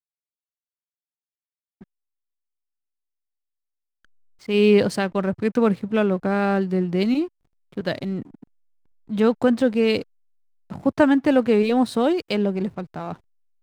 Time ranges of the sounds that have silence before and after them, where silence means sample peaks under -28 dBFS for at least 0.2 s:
4.49–7.26
7.77–8.22
9.11–10.02
10.72–13.13

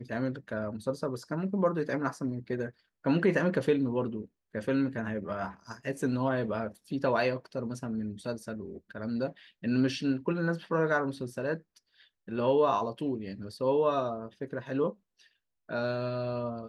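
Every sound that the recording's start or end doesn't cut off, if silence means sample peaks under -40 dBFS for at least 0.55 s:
12.28–14.92

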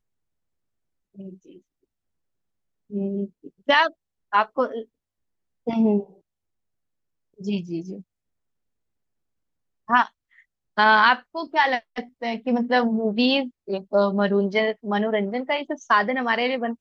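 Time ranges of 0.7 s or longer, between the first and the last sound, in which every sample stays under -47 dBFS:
1.59–2.9
4.85–5.67
6.14–7.38
8.02–9.88

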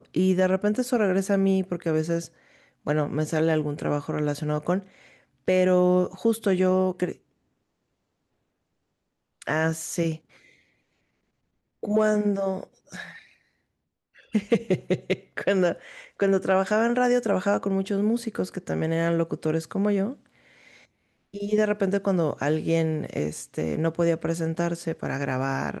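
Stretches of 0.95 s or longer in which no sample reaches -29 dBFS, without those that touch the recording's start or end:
7.12–9.42
10.15–11.83
13.03–14.35
20.12–21.35

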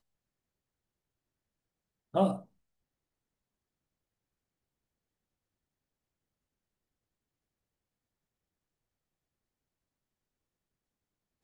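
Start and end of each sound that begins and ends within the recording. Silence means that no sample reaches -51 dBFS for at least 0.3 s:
2.14–2.44

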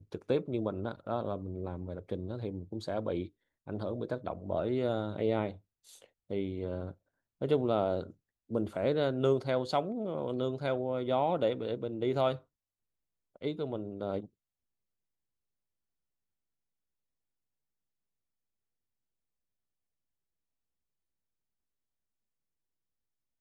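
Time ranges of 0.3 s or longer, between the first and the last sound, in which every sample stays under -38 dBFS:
3.26–3.68
5.52–6.31
6.91–7.41
8.1–8.51
12.36–13.42

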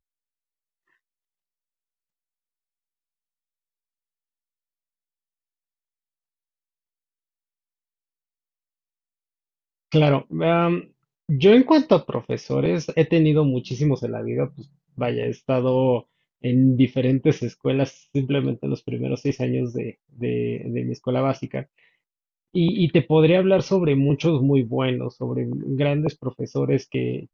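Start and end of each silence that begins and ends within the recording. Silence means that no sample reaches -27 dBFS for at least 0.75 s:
21.62–22.55

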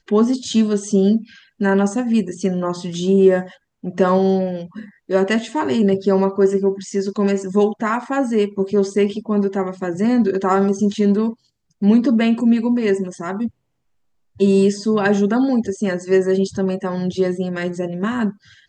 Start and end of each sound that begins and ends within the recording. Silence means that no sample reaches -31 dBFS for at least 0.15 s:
1.61–3.48
3.84–4.85
5.09–11.33
11.82–13.48
14.4–18.3

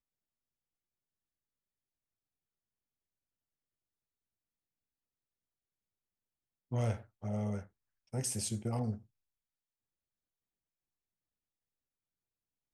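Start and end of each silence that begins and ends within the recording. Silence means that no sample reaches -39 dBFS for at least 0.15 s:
6.96–7.24
7.61–8.14

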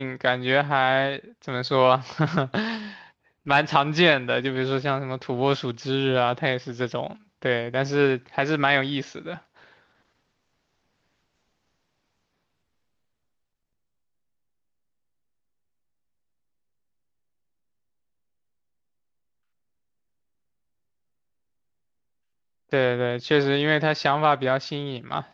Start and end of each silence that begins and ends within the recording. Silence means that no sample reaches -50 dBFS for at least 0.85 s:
9.81–22.71

